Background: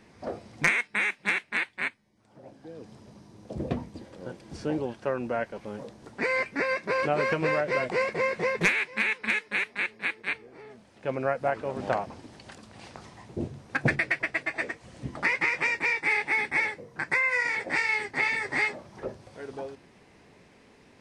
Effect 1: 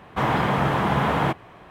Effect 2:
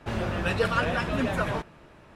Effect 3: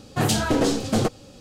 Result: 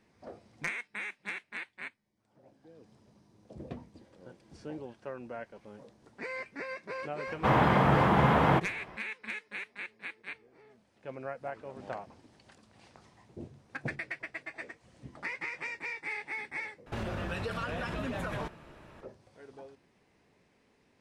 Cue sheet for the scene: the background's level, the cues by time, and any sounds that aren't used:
background −12 dB
0:07.27: mix in 1 −2 dB + high-shelf EQ 3,500 Hz −7.5 dB
0:16.86: overwrite with 2 −1 dB + downward compressor 10 to 1, threshold −30 dBFS
not used: 3

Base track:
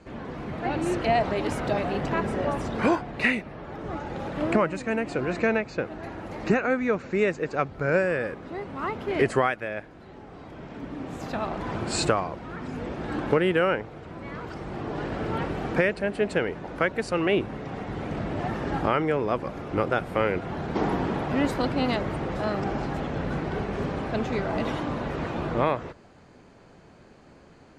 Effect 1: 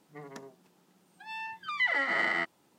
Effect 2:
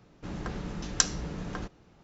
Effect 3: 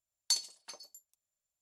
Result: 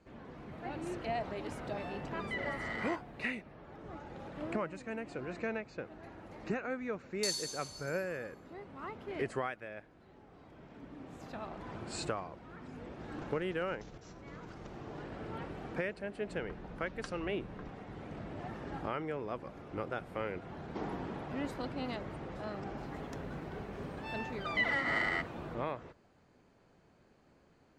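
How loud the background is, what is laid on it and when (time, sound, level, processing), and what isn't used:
base track −13.5 dB
0:00.51: mix in 1 −12.5 dB
0:06.93: mix in 3 −8.5 dB + dense smooth reverb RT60 1.4 s, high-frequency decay 0.95×, DRR −5 dB
0:12.99: mix in 2 −8 dB + compressor whose output falls as the input rises −43 dBFS, ratio −0.5
0:16.04: mix in 2 −12 dB + high-frequency loss of the air 320 metres
0:22.77: mix in 1 −4 dB

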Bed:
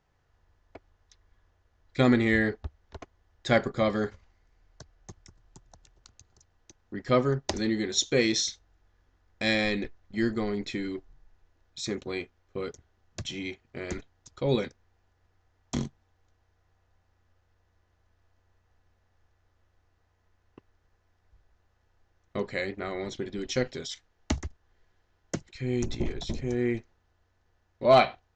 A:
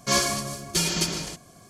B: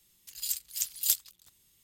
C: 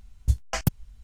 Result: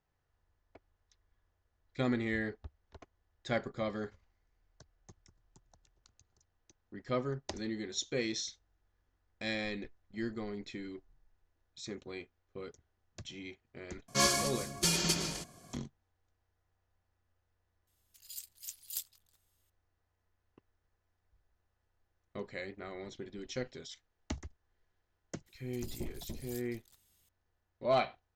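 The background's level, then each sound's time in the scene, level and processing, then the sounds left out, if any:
bed −10.5 dB
0:14.08: mix in A −5.5 dB
0:17.87: mix in B −13 dB
0:25.46: mix in B −6 dB + downward compressor 2.5 to 1, threshold −48 dBFS
not used: C

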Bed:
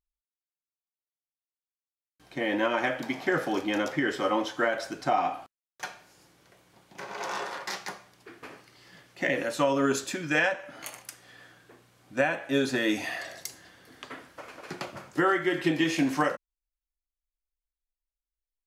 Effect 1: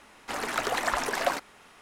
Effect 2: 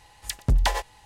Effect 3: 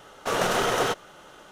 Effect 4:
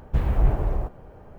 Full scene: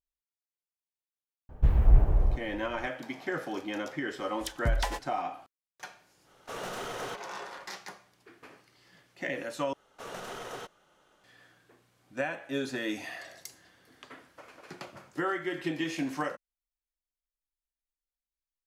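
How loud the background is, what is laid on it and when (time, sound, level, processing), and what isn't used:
bed −7 dB
0:01.49: mix in 4 −6.5 dB + low-shelf EQ 94 Hz +9 dB
0:04.17: mix in 2 −7.5 dB
0:06.22: mix in 3 −13 dB, fades 0.10 s + gain into a clipping stage and back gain 19 dB
0:09.73: overwrite with 3 −17 dB
not used: 1

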